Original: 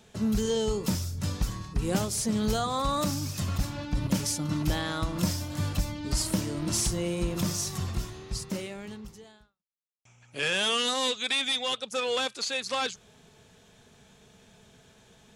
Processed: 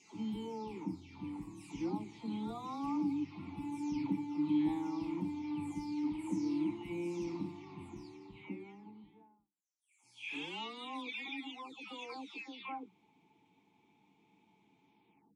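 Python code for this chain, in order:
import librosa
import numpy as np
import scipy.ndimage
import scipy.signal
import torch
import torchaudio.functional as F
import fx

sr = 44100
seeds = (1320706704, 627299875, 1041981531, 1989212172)

y = fx.spec_delay(x, sr, highs='early', ms=539)
y = fx.vowel_filter(y, sr, vowel='u')
y = y * 10.0 ** (4.0 / 20.0)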